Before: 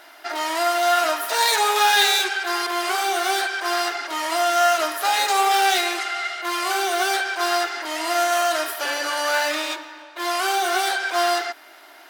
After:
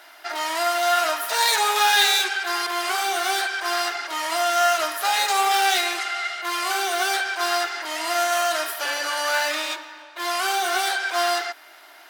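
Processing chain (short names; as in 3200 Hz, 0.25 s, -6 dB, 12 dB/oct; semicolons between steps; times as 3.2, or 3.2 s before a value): low shelf 380 Hz -10 dB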